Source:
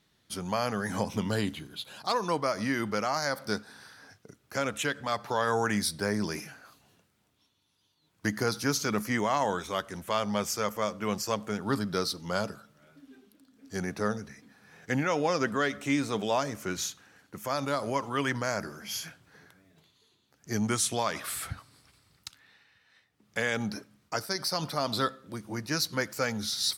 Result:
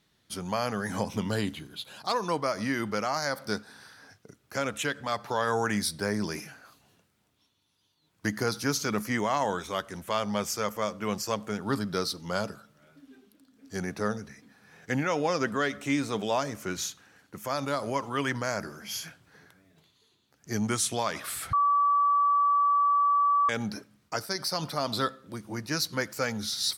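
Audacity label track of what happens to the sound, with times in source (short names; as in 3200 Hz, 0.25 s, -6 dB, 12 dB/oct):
21.530000	23.490000	bleep 1150 Hz -20 dBFS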